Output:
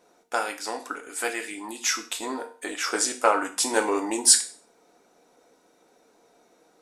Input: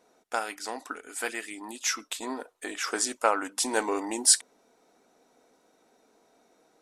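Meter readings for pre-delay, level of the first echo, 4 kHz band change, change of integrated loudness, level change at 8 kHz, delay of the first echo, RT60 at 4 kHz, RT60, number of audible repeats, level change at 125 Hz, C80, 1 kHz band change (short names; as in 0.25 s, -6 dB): 4 ms, none, +3.5 dB, +3.5 dB, +4.0 dB, none, 0.40 s, 0.40 s, none, n/a, 17.5 dB, +3.5 dB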